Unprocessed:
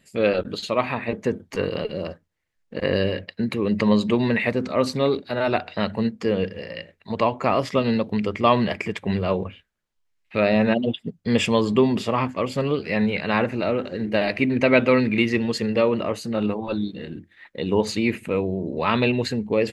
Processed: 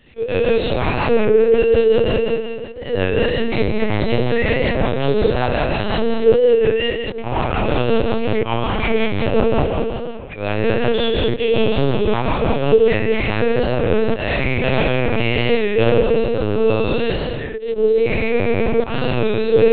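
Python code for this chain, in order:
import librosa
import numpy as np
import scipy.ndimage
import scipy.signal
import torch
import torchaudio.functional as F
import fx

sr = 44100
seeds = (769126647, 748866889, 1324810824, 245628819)

p1 = fx.spec_trails(x, sr, decay_s=2.05)
p2 = fx.high_shelf(p1, sr, hz=2100.0, db=8.0)
p3 = fx.auto_swell(p2, sr, attack_ms=418.0)
p4 = fx.over_compress(p3, sr, threshold_db=-24.0, ratio=-0.5)
p5 = p3 + (p4 * librosa.db_to_amplitude(-2.0))
p6 = fx.rotary_switch(p5, sr, hz=5.5, then_hz=0.7, switch_at_s=12.58)
p7 = fx.cheby_harmonics(p6, sr, harmonics=(7, 8), levels_db=(-43, -45), full_scale_db=-1.0)
p8 = fx.fold_sine(p7, sr, drive_db=10, ceiling_db=-1.5)
p9 = fx.small_body(p8, sr, hz=(450.0, 870.0), ring_ms=95, db=14)
p10 = p9 + fx.echo_wet_lowpass(p9, sr, ms=469, feedback_pct=37, hz=2000.0, wet_db=-21.0, dry=0)
p11 = fx.lpc_vocoder(p10, sr, seeds[0], excitation='pitch_kept', order=8)
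p12 = fx.record_warp(p11, sr, rpm=33.33, depth_cents=100.0)
y = p12 * librosa.db_to_amplitude(-12.5)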